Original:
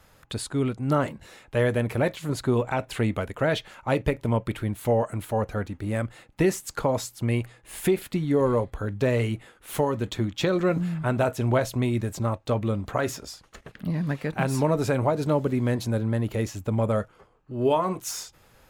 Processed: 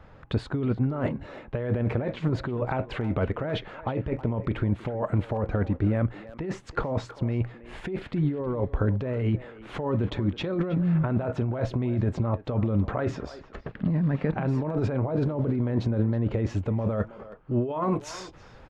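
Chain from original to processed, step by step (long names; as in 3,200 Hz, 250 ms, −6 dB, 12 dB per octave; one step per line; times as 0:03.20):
compressor whose output falls as the input rises −29 dBFS, ratio −1
head-to-tape spacing loss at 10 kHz 39 dB, from 0:16.49 at 10 kHz 29 dB
far-end echo of a speakerphone 320 ms, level −14 dB
level +4.5 dB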